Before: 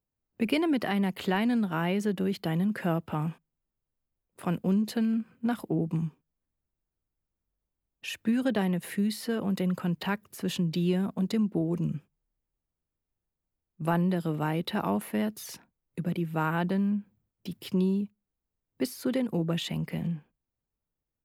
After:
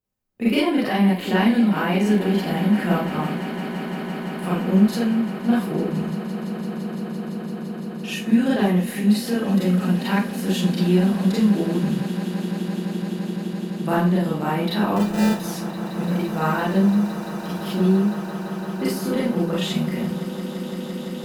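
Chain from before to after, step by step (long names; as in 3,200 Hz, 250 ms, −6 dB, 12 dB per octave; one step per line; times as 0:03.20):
0:14.96–0:15.40: sample-rate reduction 1,100 Hz, jitter 0%
harmonic generator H 7 −34 dB, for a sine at −12.5 dBFS
on a send: echo that builds up and dies away 170 ms, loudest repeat 8, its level −17 dB
on the sum: four-comb reverb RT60 0.33 s, combs from 30 ms, DRR −7 dB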